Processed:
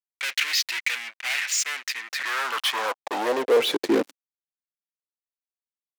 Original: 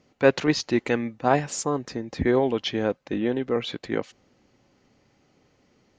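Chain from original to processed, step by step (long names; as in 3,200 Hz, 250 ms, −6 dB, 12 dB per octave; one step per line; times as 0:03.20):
harmonic generator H 3 −30 dB, 7 −44 dB, 8 −26 dB, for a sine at −4 dBFS
fuzz pedal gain 37 dB, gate −44 dBFS
high-pass filter sweep 2,100 Hz → 140 Hz, 0:01.99–0:04.73
level −8 dB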